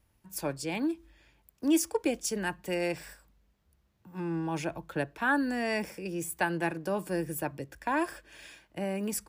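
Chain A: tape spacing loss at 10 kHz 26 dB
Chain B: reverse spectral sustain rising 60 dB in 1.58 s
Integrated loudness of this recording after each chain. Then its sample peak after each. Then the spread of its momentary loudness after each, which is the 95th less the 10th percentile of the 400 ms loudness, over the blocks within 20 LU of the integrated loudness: -34.0 LUFS, -28.0 LUFS; -17.0 dBFS, -9.0 dBFS; 10 LU, 14 LU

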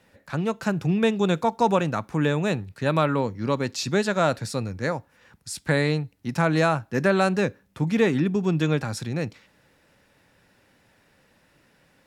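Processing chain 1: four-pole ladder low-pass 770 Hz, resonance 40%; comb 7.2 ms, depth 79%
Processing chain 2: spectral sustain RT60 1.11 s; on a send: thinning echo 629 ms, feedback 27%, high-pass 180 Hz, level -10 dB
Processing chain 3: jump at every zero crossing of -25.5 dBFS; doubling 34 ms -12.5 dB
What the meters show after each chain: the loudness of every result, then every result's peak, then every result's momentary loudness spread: -28.5 LUFS, -21.5 LUFS, -23.0 LUFS; -13.0 dBFS, -4.0 dBFS, -6.0 dBFS; 8 LU, 10 LU, 10 LU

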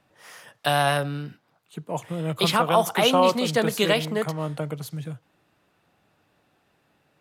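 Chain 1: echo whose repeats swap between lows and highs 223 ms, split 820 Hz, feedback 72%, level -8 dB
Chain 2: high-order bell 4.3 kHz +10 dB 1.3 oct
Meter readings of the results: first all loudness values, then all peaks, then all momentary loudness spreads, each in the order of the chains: -23.0 LUFS, -20.0 LUFS; -7.0 dBFS, -1.0 dBFS; 16 LU, 17 LU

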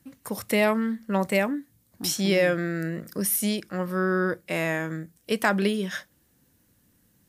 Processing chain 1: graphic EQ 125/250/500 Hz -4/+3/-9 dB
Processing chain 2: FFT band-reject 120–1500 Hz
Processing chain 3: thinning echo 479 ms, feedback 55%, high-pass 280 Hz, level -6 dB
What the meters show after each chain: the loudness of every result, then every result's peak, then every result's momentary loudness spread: -27.5 LUFS, -31.0 LUFS, -25.5 LUFS; -9.5 dBFS, -14.0 dBFS, -7.5 dBFS; 10 LU, 15 LU, 13 LU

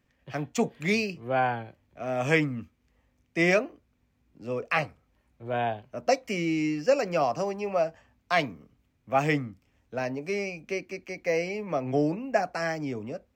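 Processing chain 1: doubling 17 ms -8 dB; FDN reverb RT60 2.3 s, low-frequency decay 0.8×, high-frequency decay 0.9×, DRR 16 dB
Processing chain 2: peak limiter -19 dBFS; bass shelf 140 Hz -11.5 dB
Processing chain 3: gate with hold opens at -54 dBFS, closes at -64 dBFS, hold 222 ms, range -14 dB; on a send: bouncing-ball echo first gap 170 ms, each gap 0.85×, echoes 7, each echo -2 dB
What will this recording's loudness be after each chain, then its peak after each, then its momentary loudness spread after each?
-28.0 LUFS, -32.0 LUFS, -25.0 LUFS; -8.0 dBFS, -17.5 dBFS, -8.5 dBFS; 13 LU, 10 LU, 7 LU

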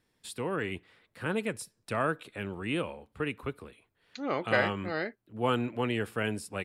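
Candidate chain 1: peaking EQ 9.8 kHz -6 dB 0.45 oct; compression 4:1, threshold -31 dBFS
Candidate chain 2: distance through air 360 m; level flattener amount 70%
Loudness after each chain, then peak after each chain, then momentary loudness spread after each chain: -37.5 LUFS, -29.5 LUFS; -19.5 dBFS, -11.5 dBFS; 10 LU, 7 LU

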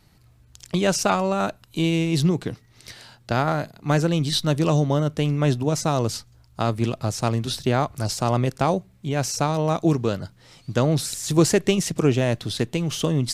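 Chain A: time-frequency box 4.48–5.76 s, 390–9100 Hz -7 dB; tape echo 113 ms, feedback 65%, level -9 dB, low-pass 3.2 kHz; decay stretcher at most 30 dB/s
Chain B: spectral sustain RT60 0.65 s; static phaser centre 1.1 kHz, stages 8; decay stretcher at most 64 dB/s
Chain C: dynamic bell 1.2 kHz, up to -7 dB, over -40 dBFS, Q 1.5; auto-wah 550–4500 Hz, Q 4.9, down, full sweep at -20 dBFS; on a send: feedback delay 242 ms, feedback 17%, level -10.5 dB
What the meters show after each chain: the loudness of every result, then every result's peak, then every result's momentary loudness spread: -21.0 LUFS, -25.0 LUFS, -34.0 LUFS; -4.5 dBFS, -7.0 dBFS, -17.0 dBFS; 6 LU, 9 LU, 10 LU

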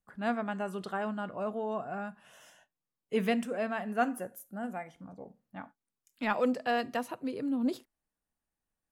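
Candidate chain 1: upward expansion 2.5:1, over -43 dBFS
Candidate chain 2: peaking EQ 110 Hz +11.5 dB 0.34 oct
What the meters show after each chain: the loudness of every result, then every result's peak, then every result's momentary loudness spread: -38.5 LUFS, -33.5 LUFS; -16.0 dBFS, -15.5 dBFS; 18 LU, 18 LU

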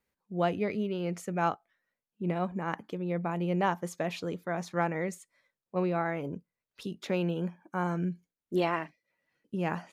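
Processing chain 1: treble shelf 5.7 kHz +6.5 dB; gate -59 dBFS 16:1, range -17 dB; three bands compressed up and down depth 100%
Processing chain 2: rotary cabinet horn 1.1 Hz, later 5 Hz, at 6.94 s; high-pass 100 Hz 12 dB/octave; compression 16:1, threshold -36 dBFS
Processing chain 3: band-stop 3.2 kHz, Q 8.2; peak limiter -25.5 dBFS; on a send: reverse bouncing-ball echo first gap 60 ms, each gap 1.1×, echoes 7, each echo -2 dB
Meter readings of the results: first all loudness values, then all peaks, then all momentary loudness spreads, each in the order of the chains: -32.0 LUFS, -42.5 LUFS, -32.5 LUFS; -13.5 dBFS, -26.0 dBFS, -16.5 dBFS; 5 LU, 6 LU, 10 LU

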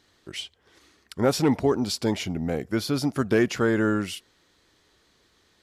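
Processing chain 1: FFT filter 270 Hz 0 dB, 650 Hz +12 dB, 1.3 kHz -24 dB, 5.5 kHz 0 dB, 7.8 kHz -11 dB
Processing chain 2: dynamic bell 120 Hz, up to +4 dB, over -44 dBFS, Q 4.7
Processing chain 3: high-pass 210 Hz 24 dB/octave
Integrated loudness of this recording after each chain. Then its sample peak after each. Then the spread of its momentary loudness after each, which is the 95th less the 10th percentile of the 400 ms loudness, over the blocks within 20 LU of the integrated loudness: -21.0 LUFS, -25.0 LUFS, -26.0 LUFS; -4.5 dBFS, -10.5 dBFS, -8.5 dBFS; 9 LU, 15 LU, 14 LU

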